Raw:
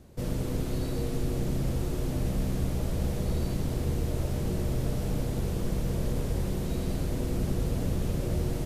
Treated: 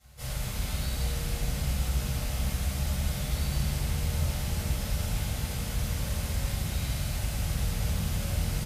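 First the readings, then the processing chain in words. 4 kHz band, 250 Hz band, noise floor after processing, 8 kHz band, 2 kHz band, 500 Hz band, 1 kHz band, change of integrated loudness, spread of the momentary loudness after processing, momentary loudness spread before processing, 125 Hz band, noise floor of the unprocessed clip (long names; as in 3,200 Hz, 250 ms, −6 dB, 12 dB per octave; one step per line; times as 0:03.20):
+7.5 dB, −6.0 dB, −35 dBFS, +7.5 dB, +6.5 dB, −7.5 dB, +1.5 dB, 0.0 dB, 2 LU, 1 LU, −0.5 dB, −32 dBFS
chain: high-pass filter 47 Hz 24 dB per octave
guitar amp tone stack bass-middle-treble 10-0-10
on a send: echo with shifted repeats 114 ms, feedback 47%, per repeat +67 Hz, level −12.5 dB
on the sum: rectangular room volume 360 cubic metres, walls mixed, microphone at 6.8 metres
level −5 dB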